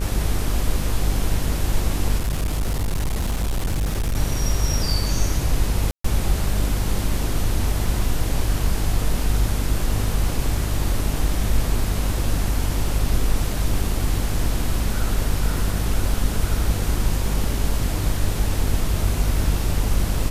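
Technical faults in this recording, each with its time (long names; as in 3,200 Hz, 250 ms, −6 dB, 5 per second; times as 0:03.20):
mains buzz 50 Hz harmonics 40 −24 dBFS
0:02.18–0:04.17: clipping −18.5 dBFS
0:05.91–0:06.04: drop-out 134 ms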